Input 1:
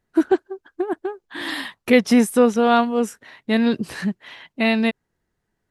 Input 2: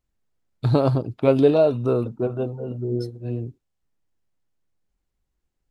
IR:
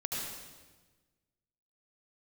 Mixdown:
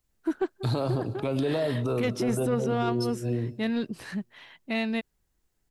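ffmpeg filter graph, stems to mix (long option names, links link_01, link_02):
-filter_complex "[0:a]asoftclip=type=tanh:threshold=-8.5dB,adelay=100,volume=-9dB[link_01];[1:a]highshelf=frequency=4800:gain=9.5,acrossover=split=170|670[link_02][link_03][link_04];[link_02]acompressor=threshold=-31dB:ratio=4[link_05];[link_03]acompressor=threshold=-26dB:ratio=4[link_06];[link_04]acompressor=threshold=-30dB:ratio=4[link_07];[link_05][link_06][link_07]amix=inputs=3:normalize=0,volume=0.5dB,asplit=2[link_08][link_09];[link_09]volume=-19.5dB[link_10];[2:a]atrim=start_sample=2205[link_11];[link_10][link_11]afir=irnorm=-1:irlink=0[link_12];[link_01][link_08][link_12]amix=inputs=3:normalize=0,alimiter=limit=-19dB:level=0:latency=1:release=18"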